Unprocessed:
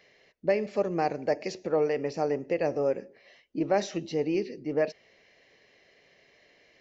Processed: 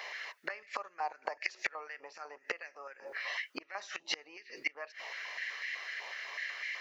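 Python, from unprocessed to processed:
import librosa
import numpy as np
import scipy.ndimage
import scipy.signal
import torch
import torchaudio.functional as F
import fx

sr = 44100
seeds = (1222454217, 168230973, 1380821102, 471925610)

y = fx.gate_flip(x, sr, shuts_db=-25.0, range_db=-28)
y = fx.filter_held_highpass(y, sr, hz=8.0, low_hz=930.0, high_hz=1900.0)
y = y * librosa.db_to_amplitude(16.0)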